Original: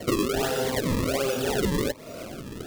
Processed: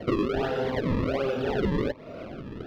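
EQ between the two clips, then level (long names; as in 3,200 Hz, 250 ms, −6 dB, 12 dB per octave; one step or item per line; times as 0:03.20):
high-frequency loss of the air 320 metres
0.0 dB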